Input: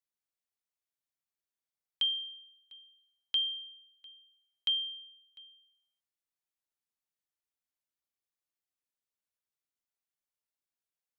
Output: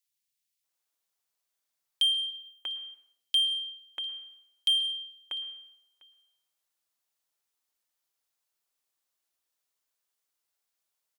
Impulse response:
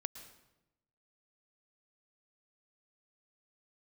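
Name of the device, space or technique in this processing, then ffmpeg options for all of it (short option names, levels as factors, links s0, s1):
saturated reverb return: -filter_complex "[0:a]bandreject=f=50:t=h:w=6,bandreject=f=100:t=h:w=6,bandreject=f=150:t=h:w=6,bandreject=f=200:t=h:w=6,asettb=1/sr,asplit=3[s0][s1][s2];[s0]atrim=end=2.304[s3];[s1]atrim=start=2.3:end=2.85,asetpts=PTS-STARTPTS,afade=t=in:d=0.004:c=qsin,afade=t=out:st=0.546:d=0.004:c=qsin,aderivative[s4];[s2]atrim=start=2.846[s5];[s3][s4]acrossfade=d=0.004:c1=hsin:c2=qsin[s6];[s6][s5]acrossfade=d=0.004:c1=qsin:c2=hsin,acrossover=split=220|2100[s7][s8][s9];[s7]adelay=70[s10];[s8]adelay=640[s11];[s10][s11][s9]amix=inputs=3:normalize=0,asplit=2[s12][s13];[1:a]atrim=start_sample=2205[s14];[s13][s14]afir=irnorm=-1:irlink=0,asoftclip=type=tanh:threshold=0.0119,volume=1.5[s15];[s12][s15]amix=inputs=2:normalize=0,lowshelf=f=370:g=-8.5,volume=1.5"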